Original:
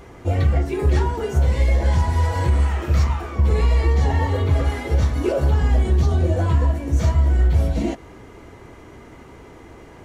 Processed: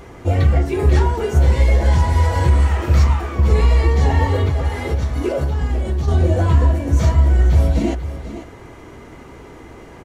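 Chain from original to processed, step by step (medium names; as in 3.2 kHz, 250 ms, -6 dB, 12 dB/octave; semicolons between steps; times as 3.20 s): 4.47–6.08 s: compression, threshold -20 dBFS, peak gain reduction 7.5 dB; delay 492 ms -12.5 dB; trim +3.5 dB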